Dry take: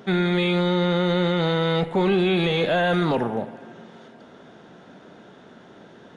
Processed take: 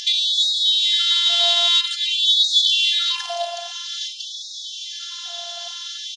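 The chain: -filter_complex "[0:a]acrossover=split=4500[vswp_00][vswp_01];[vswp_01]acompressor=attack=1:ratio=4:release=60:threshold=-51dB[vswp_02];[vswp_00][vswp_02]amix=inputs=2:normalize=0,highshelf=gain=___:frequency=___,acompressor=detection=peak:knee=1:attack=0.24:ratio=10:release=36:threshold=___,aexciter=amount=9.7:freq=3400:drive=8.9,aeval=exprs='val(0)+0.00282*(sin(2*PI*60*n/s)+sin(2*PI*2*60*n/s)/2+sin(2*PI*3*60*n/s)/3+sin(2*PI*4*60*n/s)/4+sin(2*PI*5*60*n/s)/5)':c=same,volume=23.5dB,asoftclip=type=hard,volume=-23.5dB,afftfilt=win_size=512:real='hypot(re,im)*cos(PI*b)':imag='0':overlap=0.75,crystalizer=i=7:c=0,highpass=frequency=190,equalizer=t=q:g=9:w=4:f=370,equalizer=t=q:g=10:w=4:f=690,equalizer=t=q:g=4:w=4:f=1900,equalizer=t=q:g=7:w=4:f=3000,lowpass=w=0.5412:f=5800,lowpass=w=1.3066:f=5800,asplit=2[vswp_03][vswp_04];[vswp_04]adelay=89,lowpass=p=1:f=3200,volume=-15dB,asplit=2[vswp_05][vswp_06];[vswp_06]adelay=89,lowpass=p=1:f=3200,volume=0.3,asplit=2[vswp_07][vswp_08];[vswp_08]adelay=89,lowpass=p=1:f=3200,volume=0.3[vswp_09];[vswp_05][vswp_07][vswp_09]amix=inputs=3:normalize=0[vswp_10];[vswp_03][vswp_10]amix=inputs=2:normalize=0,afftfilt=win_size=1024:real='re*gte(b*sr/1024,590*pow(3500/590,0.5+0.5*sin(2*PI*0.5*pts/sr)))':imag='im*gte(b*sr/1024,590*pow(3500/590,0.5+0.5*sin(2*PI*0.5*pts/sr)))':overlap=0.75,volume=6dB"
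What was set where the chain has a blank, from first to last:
-10.5, 4100, -27dB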